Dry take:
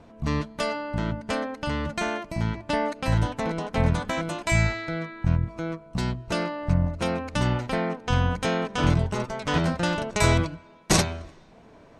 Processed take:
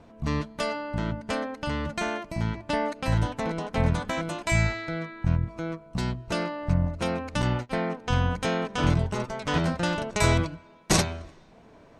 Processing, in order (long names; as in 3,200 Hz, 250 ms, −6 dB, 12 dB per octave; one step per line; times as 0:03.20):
0:07.42–0:07.84: noise gate −28 dBFS, range −19 dB
level −1.5 dB